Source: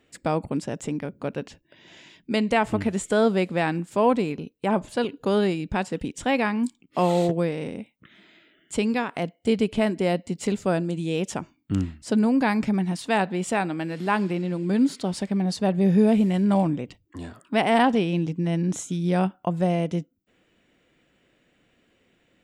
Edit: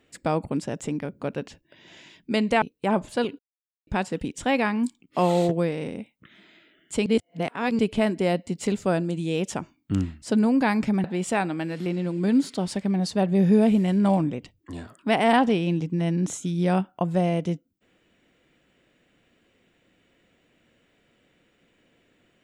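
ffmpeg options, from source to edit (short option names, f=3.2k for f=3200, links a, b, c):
-filter_complex "[0:a]asplit=8[a][b][c][d][e][f][g][h];[a]atrim=end=2.622[i];[b]atrim=start=4.418:end=5.19,asetpts=PTS-STARTPTS,afade=t=out:st=0.768:d=0.004:c=hsin[j];[c]atrim=start=5.19:end=5.67,asetpts=PTS-STARTPTS,volume=0[k];[d]atrim=start=5.67:end=8.862,asetpts=PTS-STARTPTS,afade=t=in:d=0.004:c=hsin[l];[e]atrim=start=8.858:end=9.592,asetpts=PTS-STARTPTS,areverse[m];[f]atrim=start=9.588:end=12.842[n];[g]atrim=start=13.238:end=14.062[o];[h]atrim=start=14.318[p];[j][k][l]concat=n=3:v=0:a=1[q];[i][q]acrossfade=d=0.004:c1=hsin:c2=hsin[r];[r][m]acrossfade=d=0.004:c1=hsin:c2=hsin[s];[s][n]acrossfade=d=0.004:c1=hsin:c2=hsin[t];[t][o]acrossfade=d=0.004:c1=hsin:c2=hsin[u];[u][p]acrossfade=d=0.004:c1=hsin:c2=hsin"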